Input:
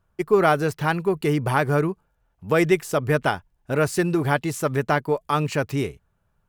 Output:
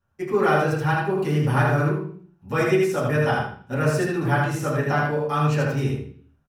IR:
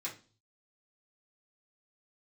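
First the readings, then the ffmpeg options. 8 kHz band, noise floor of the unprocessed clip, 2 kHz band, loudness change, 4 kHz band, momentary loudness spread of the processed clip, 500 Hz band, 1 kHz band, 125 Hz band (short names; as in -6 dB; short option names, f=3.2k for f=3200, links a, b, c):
-3.5 dB, -69 dBFS, +0.5 dB, 0.0 dB, -2.0 dB, 7 LU, -1.0 dB, 0.0 dB, +3.5 dB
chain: -filter_complex "[0:a]lowshelf=f=220:g=5.5,aecho=1:1:79|158|237:0.708|0.142|0.0283[a];[1:a]atrim=start_sample=2205,asetrate=32193,aresample=44100[b];[a][b]afir=irnorm=-1:irlink=0,volume=-5.5dB"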